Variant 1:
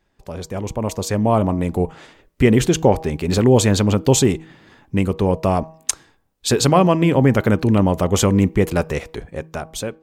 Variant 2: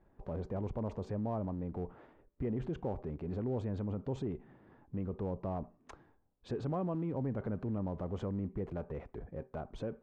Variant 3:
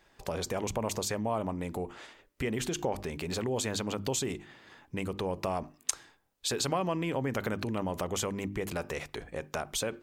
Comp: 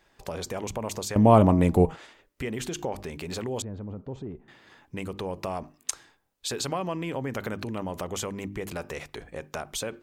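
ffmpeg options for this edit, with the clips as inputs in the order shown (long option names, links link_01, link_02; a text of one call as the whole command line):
ffmpeg -i take0.wav -i take1.wav -i take2.wav -filter_complex "[2:a]asplit=3[link_01][link_02][link_03];[link_01]atrim=end=1.162[link_04];[0:a]atrim=start=1.158:end=1.962[link_05];[link_02]atrim=start=1.958:end=3.622[link_06];[1:a]atrim=start=3.618:end=4.482[link_07];[link_03]atrim=start=4.478[link_08];[link_04][link_05]acrossfade=duration=0.004:curve1=hsin:curve2=hsin[link_09];[link_09][link_06]acrossfade=duration=0.004:curve1=hsin:curve2=hsin[link_10];[link_10][link_07]acrossfade=duration=0.004:curve1=hsin:curve2=hsin[link_11];[link_11][link_08]acrossfade=duration=0.004:curve1=hsin:curve2=hsin" out.wav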